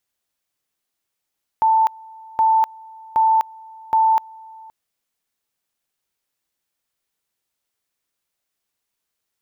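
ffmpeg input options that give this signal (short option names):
-f lavfi -i "aevalsrc='pow(10,(-12-25.5*gte(mod(t,0.77),0.25))/20)*sin(2*PI*887*t)':d=3.08:s=44100"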